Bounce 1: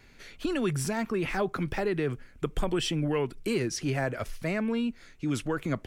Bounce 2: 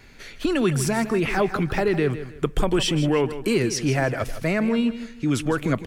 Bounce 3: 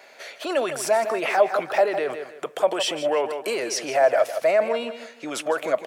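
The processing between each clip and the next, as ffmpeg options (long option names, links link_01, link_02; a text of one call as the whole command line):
ffmpeg -i in.wav -af "aecho=1:1:158|316|474:0.237|0.0711|0.0213,volume=7dB" out.wav
ffmpeg -i in.wav -af "alimiter=limit=-17dB:level=0:latency=1:release=24,highpass=frequency=620:width_type=q:width=4.9,volume=1.5dB" out.wav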